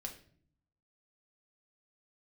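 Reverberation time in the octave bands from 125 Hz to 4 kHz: 1.1, 0.95, 0.65, 0.45, 0.45, 0.40 s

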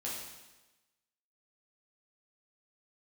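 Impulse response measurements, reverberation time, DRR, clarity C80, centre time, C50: 1.1 s, -6.5 dB, 3.5 dB, 69 ms, 1.0 dB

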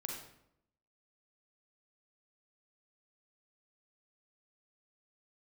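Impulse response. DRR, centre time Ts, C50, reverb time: 0.0 dB, 45 ms, 2.0 dB, 0.75 s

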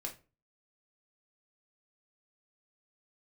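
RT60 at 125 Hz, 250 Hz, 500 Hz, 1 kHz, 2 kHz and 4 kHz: 0.50, 0.40, 0.35, 0.30, 0.25, 0.25 s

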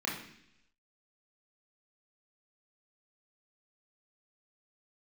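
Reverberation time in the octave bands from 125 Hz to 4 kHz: 0.90, 0.90, 0.75, 0.70, 0.90, 0.95 s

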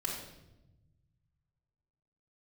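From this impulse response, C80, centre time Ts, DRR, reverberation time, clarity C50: 5.0 dB, 51 ms, -3.5 dB, 0.95 s, 2.0 dB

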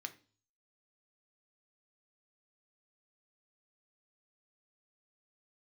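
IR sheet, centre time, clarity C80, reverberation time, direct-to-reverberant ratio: 6 ms, 21.5 dB, 0.40 s, 6.5 dB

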